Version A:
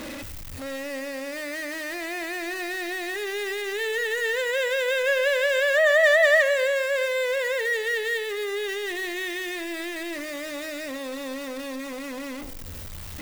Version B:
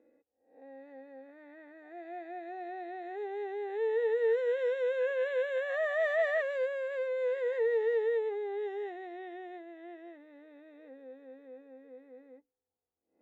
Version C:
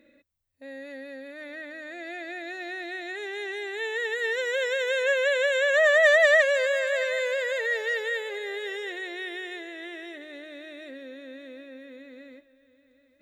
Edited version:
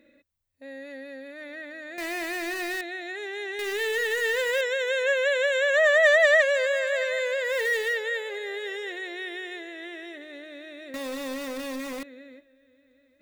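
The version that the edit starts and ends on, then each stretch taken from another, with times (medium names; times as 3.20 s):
C
1.98–2.81 s: from A
3.59–4.61 s: from A
7.50–7.92 s: from A, crossfade 0.16 s
10.94–12.03 s: from A
not used: B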